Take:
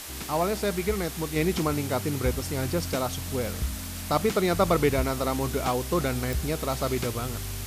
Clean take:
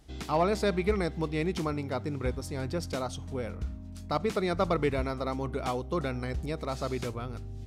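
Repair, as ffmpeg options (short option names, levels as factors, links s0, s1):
-af "adeclick=t=4,afwtdn=0.013,asetnsamples=n=441:p=0,asendcmd='1.36 volume volume -5dB',volume=1"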